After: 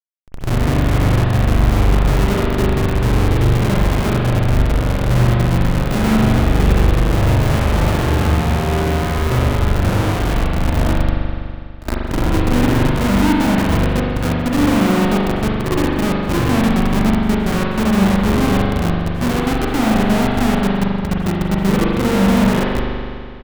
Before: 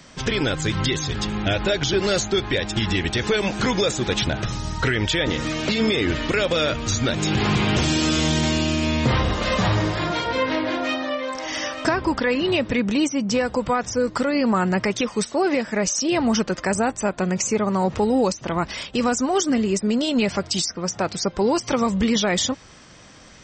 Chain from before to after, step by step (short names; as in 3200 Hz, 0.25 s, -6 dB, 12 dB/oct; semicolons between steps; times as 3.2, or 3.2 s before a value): tone controls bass +10 dB, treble -8 dB; three bands offset in time mids, highs, lows 70/260 ms, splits 630/3900 Hz; in parallel at -2 dB: limiter -12 dBFS, peak gain reduction 9 dB; on the sum: Schmitt trigger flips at -11 dBFS; on a send: reverse echo 65 ms -17.5 dB; on the sum: spring tank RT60 2.2 s, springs 41 ms, chirp 35 ms, DRR -3 dB; gain -4 dB